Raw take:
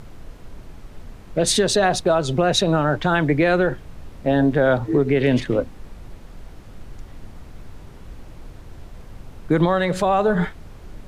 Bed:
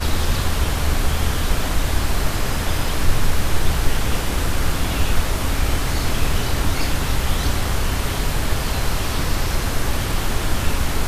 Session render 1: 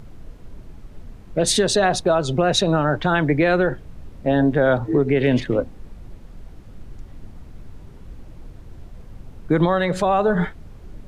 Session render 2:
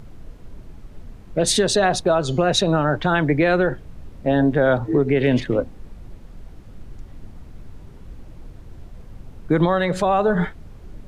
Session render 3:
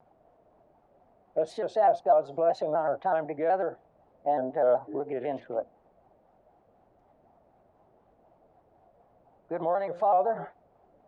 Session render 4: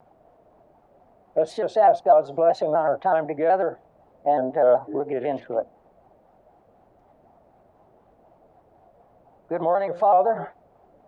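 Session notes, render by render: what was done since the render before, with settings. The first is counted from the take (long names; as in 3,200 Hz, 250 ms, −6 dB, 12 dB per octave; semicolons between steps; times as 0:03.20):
broadband denoise 6 dB, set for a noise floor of −42 dBFS
0:02.09–0:02.49: hum removal 233.6 Hz, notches 30
resonant band-pass 700 Hz, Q 4.4; pitch modulation by a square or saw wave square 4 Hz, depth 100 cents
level +6 dB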